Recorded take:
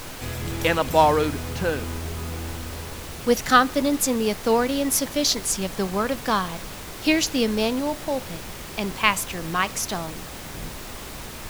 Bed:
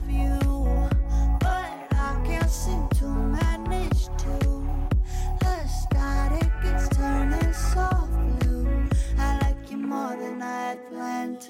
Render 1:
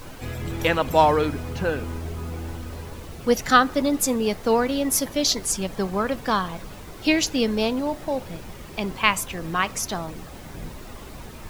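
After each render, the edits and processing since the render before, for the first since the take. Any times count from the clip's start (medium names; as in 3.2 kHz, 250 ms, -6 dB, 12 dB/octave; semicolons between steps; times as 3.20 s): noise reduction 9 dB, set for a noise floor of -37 dBFS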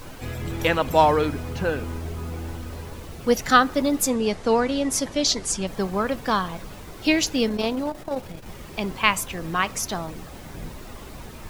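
4.08–5.67 s: low-pass 9.5 kHz 24 dB/octave; 7.48–8.46 s: transformer saturation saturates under 330 Hz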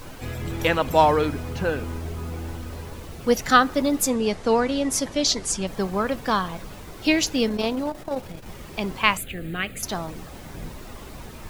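9.17–9.83 s: static phaser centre 2.4 kHz, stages 4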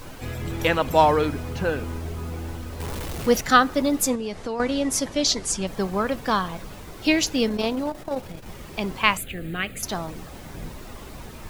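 2.80–3.41 s: jump at every zero crossing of -29.5 dBFS; 4.15–4.60 s: compression 3:1, threshold -28 dBFS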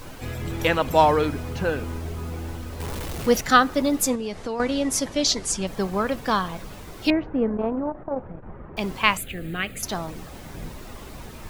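7.10–8.77 s: low-pass 1.5 kHz 24 dB/octave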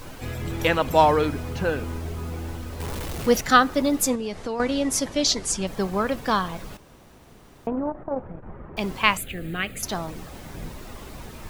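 6.77–7.67 s: room tone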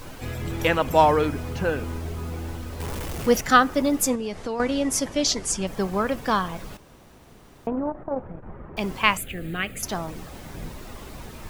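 dynamic bell 4 kHz, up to -5 dB, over -49 dBFS, Q 4.2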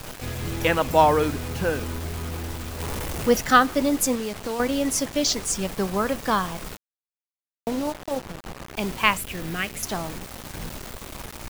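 bit crusher 6-bit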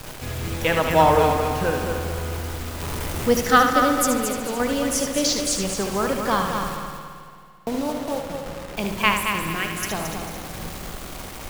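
multi-head delay 74 ms, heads first and third, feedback 56%, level -7 dB; spring tank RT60 2.6 s, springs 54 ms, chirp 65 ms, DRR 10.5 dB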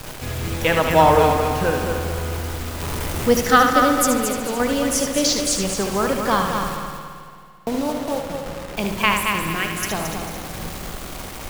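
trim +2.5 dB; peak limiter -2 dBFS, peak gain reduction 3 dB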